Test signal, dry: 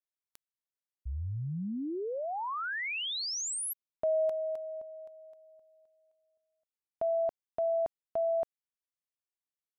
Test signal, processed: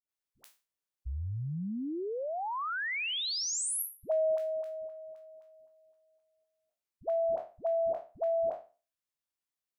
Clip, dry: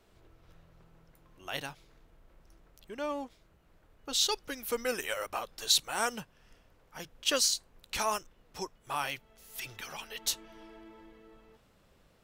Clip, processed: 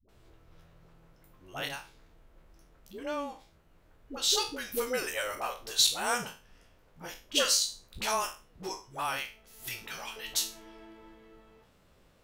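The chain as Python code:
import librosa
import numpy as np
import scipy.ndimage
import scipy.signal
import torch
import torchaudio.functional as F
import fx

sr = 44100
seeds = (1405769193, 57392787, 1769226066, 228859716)

y = fx.spec_trails(x, sr, decay_s=0.34)
y = fx.dispersion(y, sr, late='highs', ms=89.0, hz=420.0)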